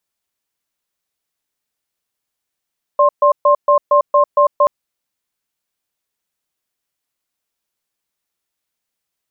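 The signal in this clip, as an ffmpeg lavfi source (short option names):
-f lavfi -i "aevalsrc='0.299*(sin(2*PI*583*t)+sin(2*PI*1060*t))*clip(min(mod(t,0.23),0.1-mod(t,0.23))/0.005,0,1)':d=1.68:s=44100"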